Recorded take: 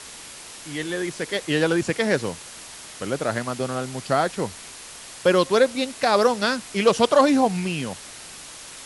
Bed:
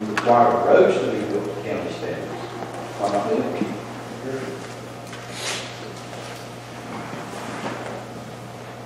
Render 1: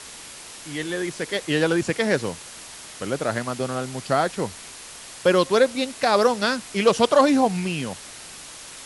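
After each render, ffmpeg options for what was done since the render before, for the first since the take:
-af anull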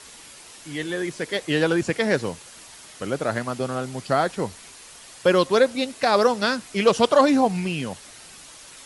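-af "afftdn=nr=6:nf=-41"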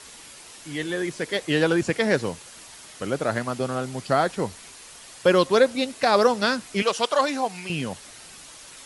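-filter_complex "[0:a]asettb=1/sr,asplit=3[a][b][c];[a]atrim=end=6.824[d];[b]atrim=start=6.82:end=7.7,asetpts=PTS-STARTPTS,afade=t=in:d=0.004:c=qsin,afade=t=out:st=0.876:d=0.004:c=qsin,highpass=f=1k:p=1[e];[c]atrim=start=7.696[f];[d][e]acrossfade=d=0.004:c1=hsin:c2=qsin[g];[g][f]acrossfade=d=0.004:c1=qsin:c2=hsin"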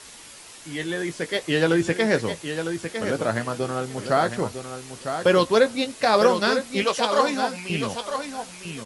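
-filter_complex "[0:a]asplit=2[a][b];[b]adelay=18,volume=-10.5dB[c];[a][c]amix=inputs=2:normalize=0,aecho=1:1:954|1908|2862:0.398|0.0717|0.0129"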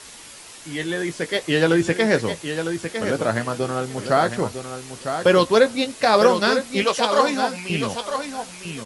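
-af "volume=2.5dB"

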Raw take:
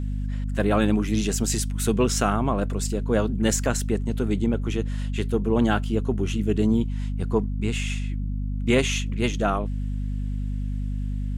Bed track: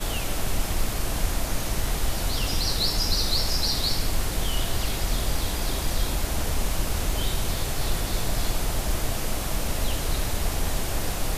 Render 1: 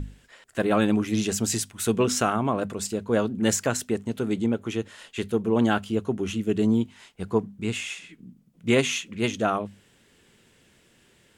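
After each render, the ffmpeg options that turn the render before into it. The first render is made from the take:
-af "bandreject=f=50:t=h:w=6,bandreject=f=100:t=h:w=6,bandreject=f=150:t=h:w=6,bandreject=f=200:t=h:w=6,bandreject=f=250:t=h:w=6"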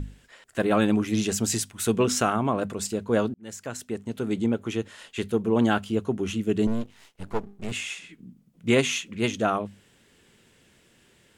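-filter_complex "[0:a]asettb=1/sr,asplit=3[a][b][c];[a]atrim=end=6.674[d];[b]atrim=start=6.67:end=7.72,asetpts=PTS-STARTPTS,afade=t=in:d=0.004:c=qsin,afade=t=out:st=1.046:d=0.004:c=qsin,aeval=exprs='max(val(0),0)':c=same[e];[c]atrim=start=7.716[f];[d][e]acrossfade=d=0.004:c1=hsin:c2=qsin[g];[g][f]acrossfade=d=0.004:c1=qsin:c2=hsin,asplit=2[h][i];[h]atrim=end=3.34,asetpts=PTS-STARTPTS,afade=t=out:st=3.336:d=0.004:c=hsin[j];[i]atrim=start=3.34,asetpts=PTS-STARTPTS,afade=t=in:d=1.09[k];[j][k]concat=n=2:v=0:a=1"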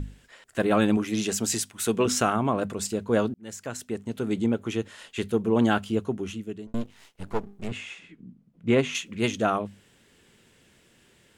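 -filter_complex "[0:a]asettb=1/sr,asplit=3[a][b][c];[a]atrim=end=0.974[d];[b]atrim=start=0.97:end=2.06,asetpts=PTS-STARTPTS,afade=t=in:d=0.004:c=qsin,afade=t=out:st=1.086:d=0.004:c=qsin,highpass=f=200:p=1[e];[c]atrim=start=2.056[f];[d][e]acrossfade=d=0.004:c1=hsin:c2=qsin[g];[g][f]acrossfade=d=0.004:c1=qsin:c2=hsin,asettb=1/sr,asplit=3[h][i][j];[h]atrim=end=7.684[k];[i]atrim=start=7.68:end=8.95,asetpts=PTS-STARTPTS,afade=t=in:d=0.004:c=qsin,afade=t=out:st=1.266:d=0.004:c=qsin,lowpass=f=1.6k:p=1[l];[j]atrim=start=8.946[m];[k][l]acrossfade=d=0.004:c1=hsin:c2=qsin[n];[n][m]acrossfade=d=0.004:c1=qsin:c2=hsin,asplit=2[o][p];[o]atrim=end=6.74,asetpts=PTS-STARTPTS,afade=t=out:st=5.94:d=0.8[q];[p]atrim=start=6.74,asetpts=PTS-STARTPTS,afade=t=in:d=0.004:c=hsin[r];[q][r]concat=n=2:v=0:a=1"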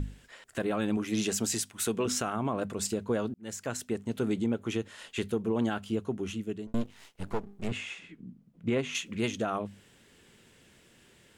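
-af "alimiter=limit=-19.5dB:level=0:latency=1:release=322"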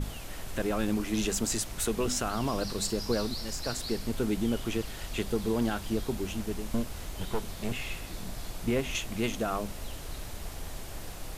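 -filter_complex "[1:a]volume=-13.5dB[a];[0:a][a]amix=inputs=2:normalize=0"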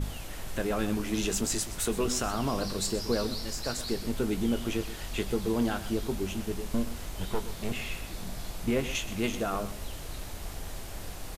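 -filter_complex "[0:a]asplit=2[a][b];[b]adelay=21,volume=-11dB[c];[a][c]amix=inputs=2:normalize=0,aecho=1:1:123:0.2"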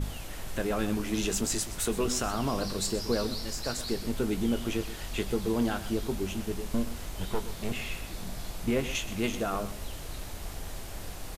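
-af anull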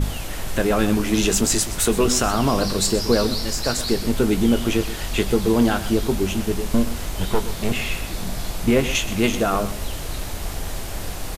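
-af "volume=10.5dB"

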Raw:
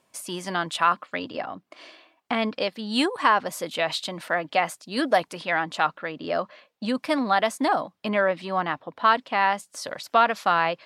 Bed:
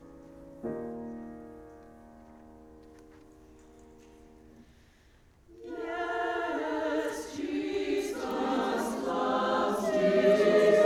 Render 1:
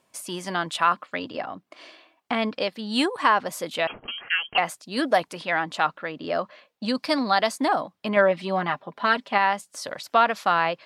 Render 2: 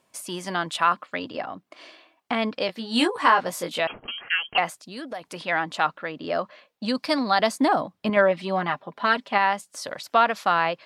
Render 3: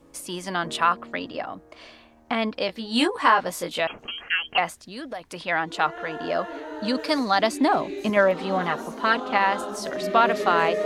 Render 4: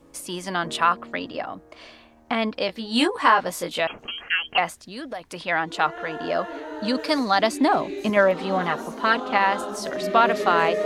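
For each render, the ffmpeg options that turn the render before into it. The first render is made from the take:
-filter_complex "[0:a]asettb=1/sr,asplit=3[a][b][c];[a]atrim=end=3.874[d];[b]atrim=start=3.87:end=4.58,asetpts=PTS-STARTPTS,afade=t=in:d=0.004:c=qsin,afade=t=out:st=0.706:d=0.004:c=qsin,lowpass=f=2.9k:t=q:w=0.5098,lowpass=f=2.9k:t=q:w=0.6013,lowpass=f=2.9k:t=q:w=0.9,lowpass=f=2.9k:t=q:w=2.563,afreqshift=-3400[e];[c]atrim=start=4.576[f];[d][e]acrossfade=d=0.004:c1=hsin:c2=qsin[g];[g][f]acrossfade=d=0.004:c1=qsin:c2=hsin,asettb=1/sr,asplit=3[h][i][j];[h]atrim=end=6.884[k];[i]atrim=start=6.88:end=7.56,asetpts=PTS-STARTPTS,afade=t=in:d=0.004:c=qsin,afade=t=out:st=0.676:d=0.004:c=qsin,equalizer=f=4.6k:t=o:w=0.38:g=12[l];[j]atrim=start=7.556[m];[k][l]acrossfade=d=0.004:c1=hsin:c2=qsin[n];[n][m]acrossfade=d=0.004:c1=qsin:c2=hsin,asettb=1/sr,asplit=3[o][p][q];[o]atrim=end=8.164[r];[p]atrim=start=8.16:end=9.38,asetpts=PTS-STARTPTS,afade=t=in:d=0.004:c=qsin,afade=t=out:st=1.216:d=0.004:c=qsin,aecho=1:1:5:0.68,atrim=end_sample=53802[s];[q]atrim=start=9.376[t];[r][s]acrossfade=d=0.004:c1=hsin:c2=qsin[u];[u][t]acrossfade=d=0.004:c1=qsin:c2=hsin"
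-filter_complex "[0:a]asettb=1/sr,asplit=3[a][b][c];[a]atrim=end=2.674[d];[b]atrim=start=2.67:end=3.8,asetpts=PTS-STARTPTS,afade=t=in:d=0.004:c=qsin,afade=t=out:st=1.126:d=0.004:c=qsin,asplit=2[e][f];[f]adelay=17,volume=-3.5dB[g];[e][g]amix=inputs=2:normalize=0,atrim=end_sample=49833[h];[c]atrim=start=3.796[i];[d][h]acrossfade=d=0.004:c1=hsin:c2=qsin[j];[j][i]acrossfade=d=0.004:c1=qsin:c2=hsin,asettb=1/sr,asplit=3[k][l][m];[k]atrim=end=4.684[n];[l]atrim=start=4.68:end=5.25,asetpts=PTS-STARTPTS,afade=t=in:d=0.004:c=qsin,afade=t=out:st=0.566:d=0.004:c=qsin,acompressor=threshold=-37dB:ratio=2.5:attack=3.2:release=140:knee=1:detection=peak[o];[m]atrim=start=5.246[p];[n][o]acrossfade=d=0.004:c1=hsin:c2=qsin[q];[q][p]acrossfade=d=0.004:c1=qsin:c2=hsin,asettb=1/sr,asplit=3[r][s][t];[r]atrim=end=7.394[u];[s]atrim=start=7.39:end=8.1,asetpts=PTS-STARTPTS,afade=t=in:d=0.004:c=qsin,afade=t=out:st=0.706:d=0.004:c=qsin,lowshelf=f=360:g=7[v];[t]atrim=start=8.096[w];[u][v]acrossfade=d=0.004:c1=hsin:c2=qsin[x];[x][w]acrossfade=d=0.004:c1=qsin:c2=hsin"
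-filter_complex "[1:a]volume=-3.5dB[a];[0:a][a]amix=inputs=2:normalize=0"
-af "volume=1dB"

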